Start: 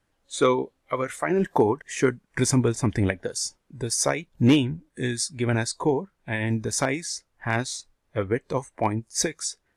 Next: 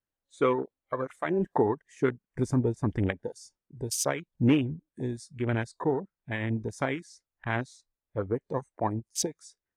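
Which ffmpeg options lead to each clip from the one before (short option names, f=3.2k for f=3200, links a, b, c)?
-af "afwtdn=0.0316,volume=-4.5dB"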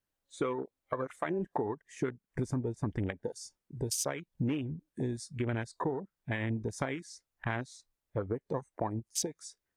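-af "acompressor=threshold=-34dB:ratio=6,volume=3.5dB"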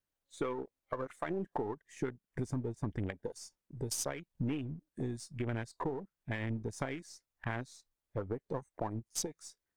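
-af "aeval=exprs='if(lt(val(0),0),0.708*val(0),val(0))':c=same,volume=-2dB"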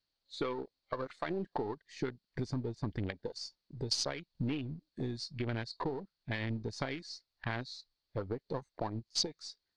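-af "lowpass=f=4.4k:t=q:w=8.1"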